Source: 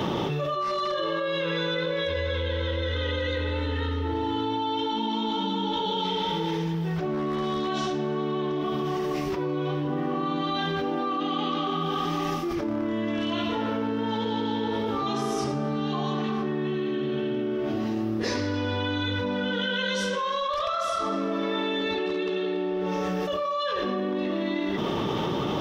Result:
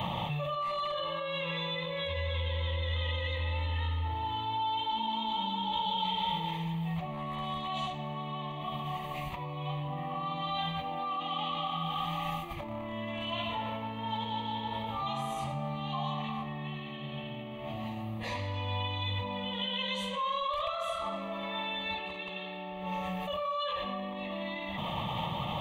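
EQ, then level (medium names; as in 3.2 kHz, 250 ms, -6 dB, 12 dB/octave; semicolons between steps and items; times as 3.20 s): peaking EQ 280 Hz -11.5 dB 0.58 oct; static phaser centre 1.5 kHz, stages 6; -1.5 dB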